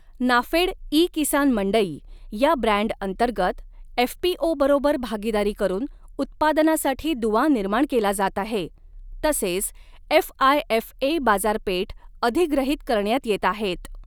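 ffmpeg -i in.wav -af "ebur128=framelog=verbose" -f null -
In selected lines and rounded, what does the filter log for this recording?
Integrated loudness:
  I:         -22.5 LUFS
  Threshold: -32.8 LUFS
Loudness range:
  LRA:         1.5 LU
  Threshold: -42.9 LUFS
  LRA low:   -23.6 LUFS
  LRA high:  -22.1 LUFS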